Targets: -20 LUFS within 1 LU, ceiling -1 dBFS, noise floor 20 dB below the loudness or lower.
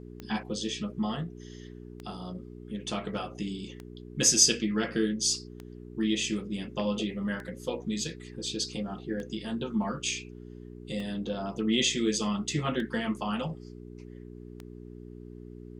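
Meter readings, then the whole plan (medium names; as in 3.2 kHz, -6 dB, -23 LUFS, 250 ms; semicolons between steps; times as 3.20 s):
clicks found 9; hum 60 Hz; highest harmonic 420 Hz; hum level -42 dBFS; loudness -30.0 LUFS; peak level -7.5 dBFS; loudness target -20.0 LUFS
-> de-click; de-hum 60 Hz, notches 7; trim +10 dB; peak limiter -1 dBFS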